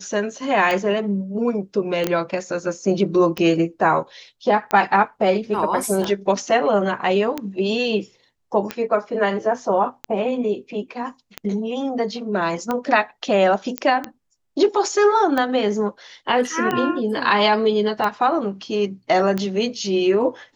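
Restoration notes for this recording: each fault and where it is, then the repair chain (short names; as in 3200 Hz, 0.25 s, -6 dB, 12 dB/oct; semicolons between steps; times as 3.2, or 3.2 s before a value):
tick 45 rpm -10 dBFS
2.07 pop -7 dBFS
13.78 pop -8 dBFS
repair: de-click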